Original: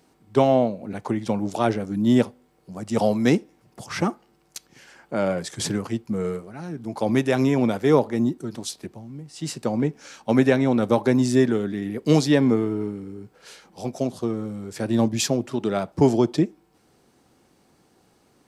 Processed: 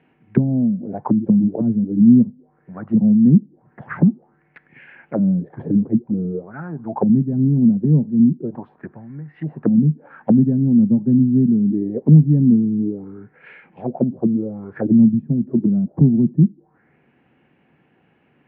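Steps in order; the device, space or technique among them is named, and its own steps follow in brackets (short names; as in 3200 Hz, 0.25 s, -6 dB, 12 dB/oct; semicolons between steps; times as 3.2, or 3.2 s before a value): envelope filter bass rig (envelope low-pass 200–2900 Hz down, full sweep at -20.5 dBFS; speaker cabinet 64–2400 Hz, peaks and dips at 150 Hz +8 dB, 240 Hz +4 dB, 1200 Hz -4 dB, 1700 Hz +5 dB); gain -1 dB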